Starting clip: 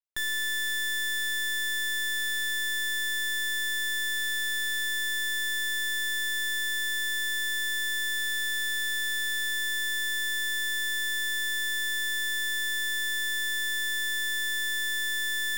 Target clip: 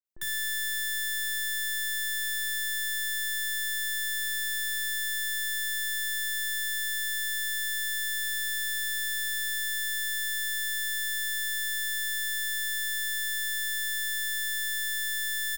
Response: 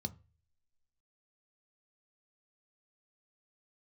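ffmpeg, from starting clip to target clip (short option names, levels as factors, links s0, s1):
-filter_complex "[0:a]highshelf=f=6700:g=10,acrossover=split=670[s0][s1];[s1]adelay=50[s2];[s0][s2]amix=inputs=2:normalize=0,asplit=2[s3][s4];[1:a]atrim=start_sample=2205,highshelf=f=5600:g=-6,adelay=58[s5];[s4][s5]afir=irnorm=-1:irlink=0,volume=0.596[s6];[s3][s6]amix=inputs=2:normalize=0,volume=0.562"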